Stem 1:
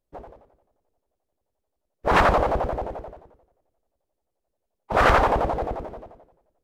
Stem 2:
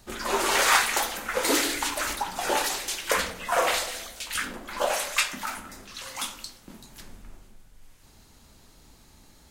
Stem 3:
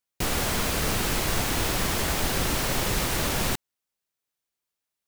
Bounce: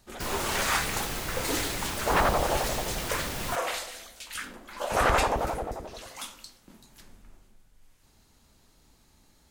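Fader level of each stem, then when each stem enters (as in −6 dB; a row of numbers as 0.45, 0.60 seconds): −6.0, −7.0, −8.0 decibels; 0.00, 0.00, 0.00 seconds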